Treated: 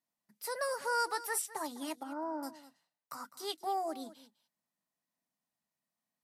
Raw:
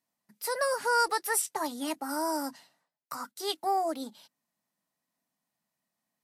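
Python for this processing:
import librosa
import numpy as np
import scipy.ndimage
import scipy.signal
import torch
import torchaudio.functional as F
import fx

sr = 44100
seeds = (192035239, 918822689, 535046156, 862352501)

y = fx.lowpass(x, sr, hz=1200.0, slope=12, at=(2.03, 2.43))
y = y + 10.0 ** (-16.5 / 20.0) * np.pad(y, (int(205 * sr / 1000.0), 0))[:len(y)]
y = y * librosa.db_to_amplitude(-6.5)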